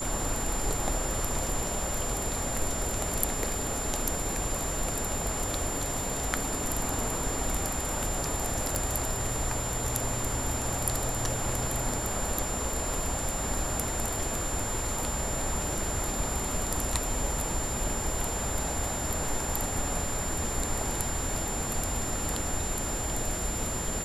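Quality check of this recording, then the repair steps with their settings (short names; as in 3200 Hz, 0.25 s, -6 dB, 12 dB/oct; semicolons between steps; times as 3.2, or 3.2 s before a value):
tone 7200 Hz -34 dBFS
8.75 pop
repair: de-click; notch 7200 Hz, Q 30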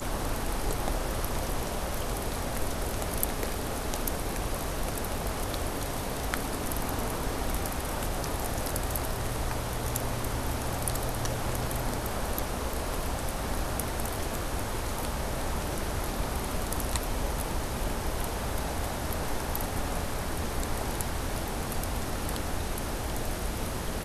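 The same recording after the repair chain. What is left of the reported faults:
none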